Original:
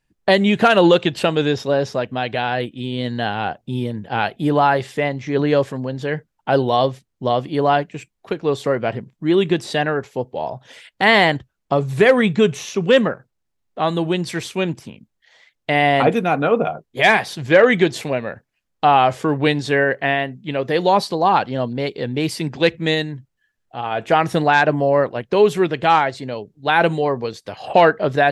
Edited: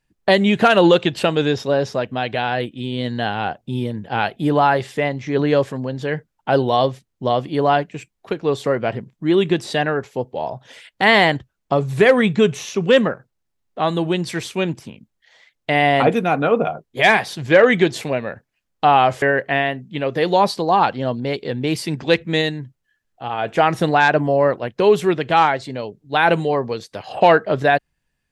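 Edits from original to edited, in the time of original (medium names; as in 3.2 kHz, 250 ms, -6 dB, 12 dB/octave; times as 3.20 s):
19.22–19.75 s: delete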